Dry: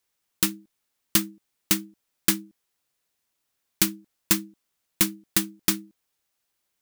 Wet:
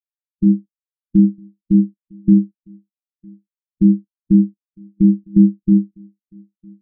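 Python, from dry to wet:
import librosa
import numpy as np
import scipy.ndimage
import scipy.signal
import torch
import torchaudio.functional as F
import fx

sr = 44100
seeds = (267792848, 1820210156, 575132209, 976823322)

p1 = fx.riaa(x, sr, side='playback')
p2 = fx.over_compress(p1, sr, threshold_db=-29.0, ratio=-1.0)
p3 = p1 + F.gain(torch.from_numpy(p2), 2.0).numpy()
p4 = fx.doubler(p3, sr, ms=35.0, db=-12.5)
p5 = p4 + 10.0 ** (-11.5 / 20.0) * np.pad(p4, (int(956 * sr / 1000.0), 0))[:len(p4)]
p6 = fx.spectral_expand(p5, sr, expansion=2.5)
y = F.gain(torch.from_numpy(p6), 1.5).numpy()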